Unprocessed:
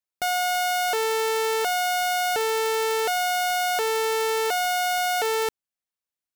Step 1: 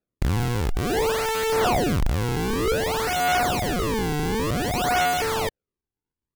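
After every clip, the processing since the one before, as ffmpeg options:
ffmpeg -i in.wav -af "acrusher=samples=41:mix=1:aa=0.000001:lfo=1:lforange=65.6:lforate=0.54,aphaser=in_gain=1:out_gain=1:delay=2.6:decay=0.38:speed=0.6:type=sinusoidal" out.wav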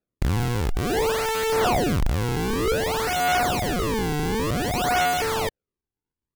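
ffmpeg -i in.wav -af anull out.wav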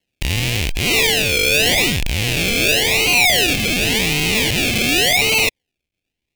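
ffmpeg -i in.wav -af "acrusher=samples=36:mix=1:aa=0.000001:lfo=1:lforange=21.6:lforate=0.89,asoftclip=type=tanh:threshold=-23.5dB,highshelf=frequency=1800:width_type=q:width=3:gain=11,volume=6dB" out.wav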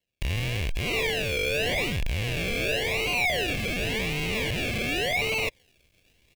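ffmpeg -i in.wav -filter_complex "[0:a]acrossover=split=2700[link_01][link_02];[link_02]acompressor=threshold=-26dB:ratio=4:attack=1:release=60[link_03];[link_01][link_03]amix=inputs=2:normalize=0,aecho=1:1:1.8:0.33,areverse,acompressor=mode=upward:threshold=-34dB:ratio=2.5,areverse,volume=-8.5dB" out.wav

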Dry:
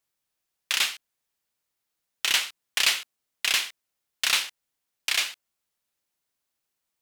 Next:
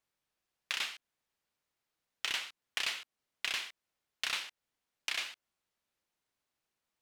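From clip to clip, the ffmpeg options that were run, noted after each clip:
ffmpeg -i in.wav -af "lowpass=frequency=3500:poles=1,acompressor=threshold=-36dB:ratio=2.5" out.wav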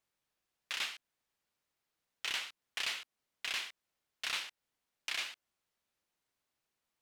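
ffmpeg -i in.wav -af "alimiter=level_in=0.5dB:limit=-24dB:level=0:latency=1:release=11,volume=-0.5dB" out.wav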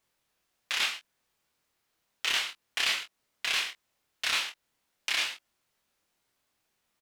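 ffmpeg -i in.wav -af "aecho=1:1:25|44:0.631|0.224,volume=7dB" out.wav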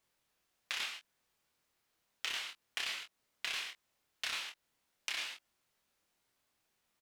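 ffmpeg -i in.wav -af "acompressor=threshold=-33dB:ratio=6,volume=-2.5dB" out.wav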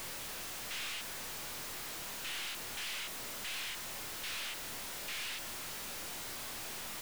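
ffmpeg -i in.wav -af "aeval=exprs='val(0)+0.5*0.00891*sgn(val(0))':channel_layout=same,aeval=exprs='(tanh(200*val(0)+0.3)-tanh(0.3))/200':channel_layout=same,volume=6.5dB" out.wav

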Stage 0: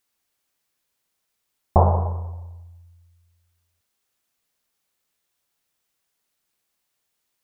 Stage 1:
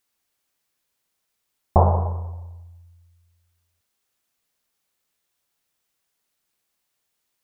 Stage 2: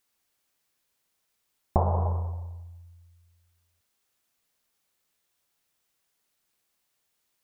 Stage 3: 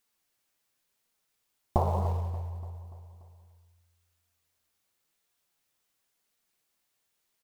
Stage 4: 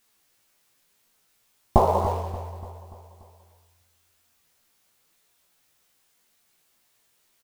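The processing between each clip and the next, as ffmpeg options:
ffmpeg -i in.wav -af anull out.wav
ffmpeg -i in.wav -af "acompressor=threshold=-20dB:ratio=6" out.wav
ffmpeg -i in.wav -filter_complex "[0:a]asplit=2[link_01][link_02];[link_02]acrusher=bits=4:mode=log:mix=0:aa=0.000001,volume=-9dB[link_03];[link_01][link_03]amix=inputs=2:normalize=0,flanger=delay=4.2:depth=5.7:regen=65:speed=0.94:shape=sinusoidal,aecho=1:1:290|580|870|1160|1450:0.158|0.084|0.0445|0.0236|0.0125" out.wav
ffmpeg -i in.wav -filter_complex "[0:a]asplit=2[link_01][link_02];[link_02]adelay=18,volume=-2dB[link_03];[link_01][link_03]amix=inputs=2:normalize=0,volume=8.5dB" out.wav

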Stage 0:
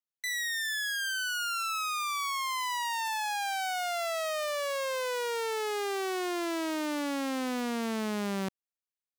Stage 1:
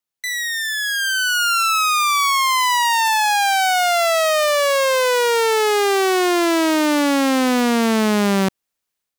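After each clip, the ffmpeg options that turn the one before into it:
ffmpeg -i in.wav -af "dynaudnorm=framelen=750:gausssize=3:maxgain=7dB,volume=8.5dB" out.wav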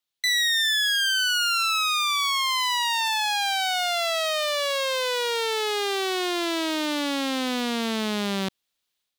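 ffmpeg -i in.wav -af "equalizer=frequency=3600:width=1.5:gain=10,alimiter=limit=-14dB:level=0:latency=1:release=33,volume=-2dB" out.wav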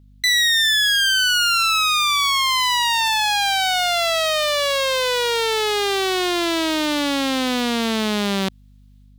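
ffmpeg -i in.wav -af "aeval=exprs='val(0)+0.00224*(sin(2*PI*50*n/s)+sin(2*PI*2*50*n/s)/2+sin(2*PI*3*50*n/s)/3+sin(2*PI*4*50*n/s)/4+sin(2*PI*5*50*n/s)/5)':channel_layout=same,volume=5.5dB" out.wav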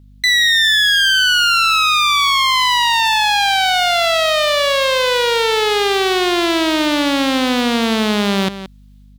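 ffmpeg -i in.wav -filter_complex "[0:a]acrossover=split=4400[link_01][link_02];[link_02]acompressor=threshold=-29dB:ratio=4:attack=1:release=60[link_03];[link_01][link_03]amix=inputs=2:normalize=0,asplit=2[link_04][link_05];[link_05]adelay=174.9,volume=-12dB,highshelf=frequency=4000:gain=-3.94[link_06];[link_04][link_06]amix=inputs=2:normalize=0,volume=5dB" out.wav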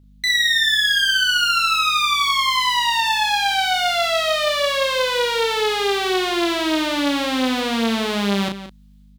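ffmpeg -i in.wav -filter_complex "[0:a]asplit=2[link_01][link_02];[link_02]adelay=35,volume=-4dB[link_03];[link_01][link_03]amix=inputs=2:normalize=0,volume=-6dB" out.wav

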